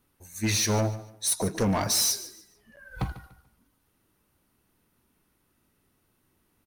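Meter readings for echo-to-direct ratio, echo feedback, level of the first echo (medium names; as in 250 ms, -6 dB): -15.5 dB, 29%, -16.0 dB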